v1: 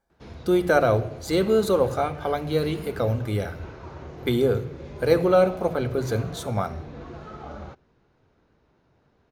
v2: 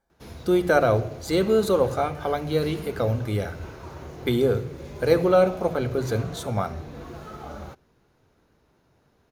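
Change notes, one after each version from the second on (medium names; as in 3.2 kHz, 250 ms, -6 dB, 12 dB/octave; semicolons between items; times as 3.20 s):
background: remove distance through air 120 m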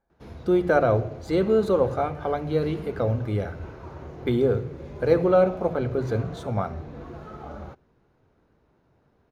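master: add low-pass 1.6 kHz 6 dB/octave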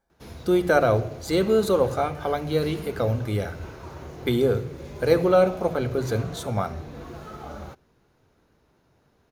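master: remove low-pass 1.6 kHz 6 dB/octave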